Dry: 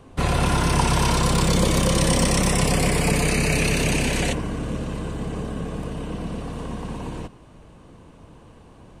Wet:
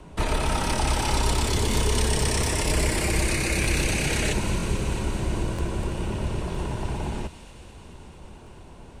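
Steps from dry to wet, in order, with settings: peak limiter -17.5 dBFS, peak gain reduction 10 dB; frequency shift -100 Hz; on a send: feedback echo behind a high-pass 220 ms, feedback 76%, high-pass 2.5 kHz, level -9 dB; on the sum: crackling interface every 0.96 s, samples 1024, repeat, from 0.74 s; trim +2.5 dB

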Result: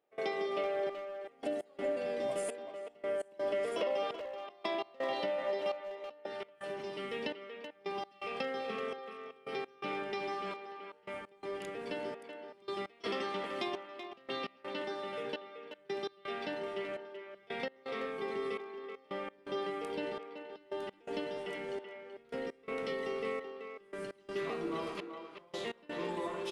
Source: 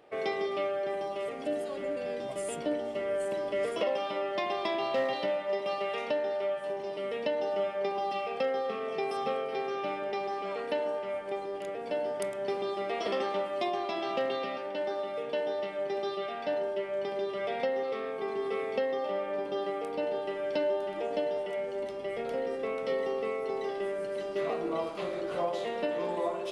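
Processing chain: peaking EQ 87 Hz -12 dB 0.82 oct, from 6.26 s 630 Hz; compression 3:1, threshold -34 dBFS, peak gain reduction 7 dB; trance gate ".xxxx...x" 84 bpm -24 dB; speakerphone echo 380 ms, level -7 dB; trim +1 dB

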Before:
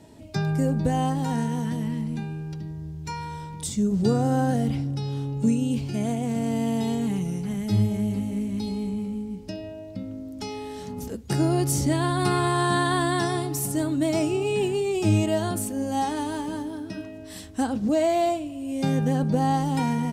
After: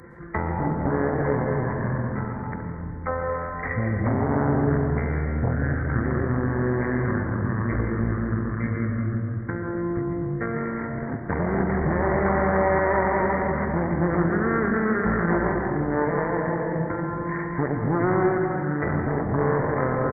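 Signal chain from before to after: Chebyshev shaper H 5 -22 dB, 6 -30 dB, 7 -31 dB, 8 -14 dB, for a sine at -9.5 dBFS; speakerphone echo 270 ms, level -10 dB; resampled via 8 kHz; tilt EQ +3.5 dB/octave; compression 2:1, threshold -36 dBFS, peak gain reduction 10 dB; reverberation RT60 3.0 s, pre-delay 85 ms, DRR 1.5 dB; pitch shift -10.5 st; trim +8.5 dB

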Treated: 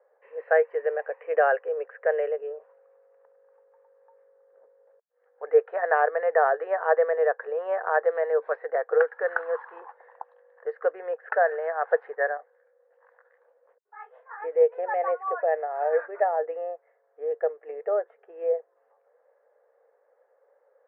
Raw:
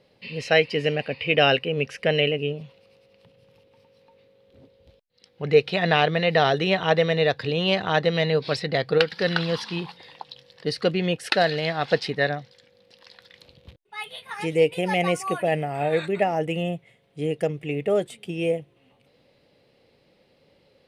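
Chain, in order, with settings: Chebyshev band-pass 460–1700 Hz, order 4; 12.37–14.42 s: detune thickener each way 48 cents

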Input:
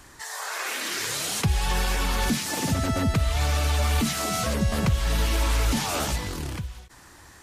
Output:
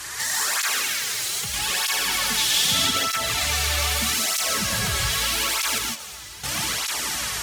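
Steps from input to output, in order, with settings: tilt shelf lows -10 dB, about 860 Hz; on a send: echo that smears into a reverb 506 ms, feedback 56%, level -14.5 dB; on the sum: compression 6:1, threshold -31 dBFS, peak gain reduction 13.5 dB; sine folder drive 10 dB, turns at -18.5 dBFS; 0.81–1.54 s: power-law waveshaper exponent 2; 2.37–2.91 s: peaking EQ 3.4 kHz +12.5 dB 0.47 oct; 5.78–6.44 s: expander -13 dBFS; gated-style reverb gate 190 ms rising, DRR 0 dB; cancelling through-zero flanger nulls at 0.8 Hz, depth 4.5 ms; trim -1 dB

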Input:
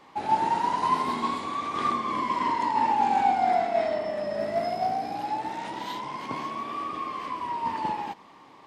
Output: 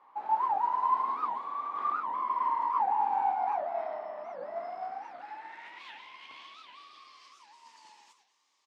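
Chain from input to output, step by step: frequency-shifting echo 110 ms, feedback 31%, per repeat +47 Hz, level -9 dB; band-pass sweep 1 kHz -> 6.5 kHz, 4.53–7.59 s; warped record 78 rpm, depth 250 cents; trim -3 dB

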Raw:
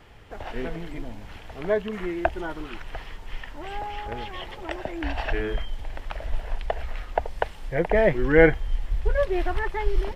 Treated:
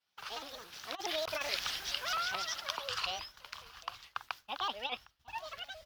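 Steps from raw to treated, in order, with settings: Doppler pass-by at 2.90 s, 10 m/s, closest 7.6 m; high-pass 750 Hz 6 dB/octave; peaking EQ 4.8 kHz -11 dB 0.65 oct; expander -55 dBFS; compressor with a negative ratio -39 dBFS, ratio -0.5; treble shelf 2.5 kHz +11.5 dB; speed mistake 45 rpm record played at 78 rpm; echo from a far wall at 130 m, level -19 dB; vibrato with a chosen wave saw up 4.7 Hz, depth 160 cents; trim +3 dB

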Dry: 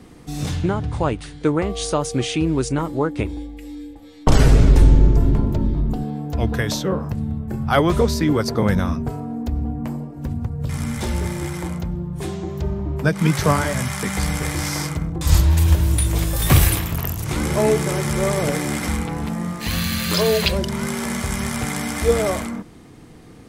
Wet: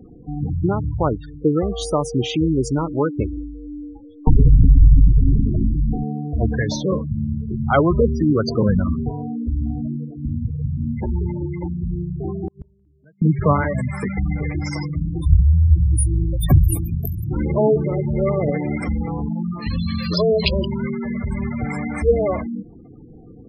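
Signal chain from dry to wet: spectral gate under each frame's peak -15 dB strong; 12.30–13.22 s: inverted gate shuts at -18 dBFS, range -35 dB; trim +1.5 dB

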